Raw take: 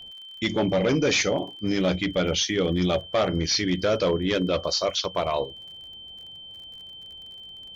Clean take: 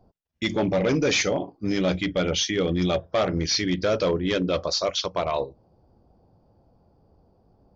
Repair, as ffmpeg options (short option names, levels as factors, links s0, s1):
-af "adeclick=t=4,bandreject=f=3100:w=30"